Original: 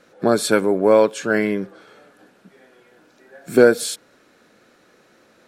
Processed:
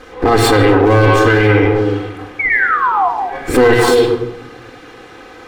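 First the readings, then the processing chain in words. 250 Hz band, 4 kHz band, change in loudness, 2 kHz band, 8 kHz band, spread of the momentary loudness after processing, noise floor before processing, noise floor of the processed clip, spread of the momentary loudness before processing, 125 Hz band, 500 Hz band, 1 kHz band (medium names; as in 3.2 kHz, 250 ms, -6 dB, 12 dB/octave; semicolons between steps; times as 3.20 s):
+7.5 dB, +9.5 dB, +5.5 dB, +12.0 dB, +2.5 dB, 10 LU, -56 dBFS, -38 dBFS, 13 LU, +19.5 dB, +5.5 dB, +14.0 dB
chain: comb filter that takes the minimum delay 2.5 ms; treble shelf 5.3 kHz -11.5 dB; in parallel at +0.5 dB: compression, threshold -27 dBFS, peak gain reduction 18 dB; on the sum: painted sound fall, 2.39–3.09 s, 680–2300 Hz -28 dBFS; one-sided clip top -10.5 dBFS, bottom -4 dBFS; on a send: repeats whose band climbs or falls 105 ms, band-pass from 2.7 kHz, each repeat -1.4 oct, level -0.5 dB; on the sum: simulated room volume 2300 m³, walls furnished, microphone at 2 m; loudness maximiser +12.5 dB; trim -1 dB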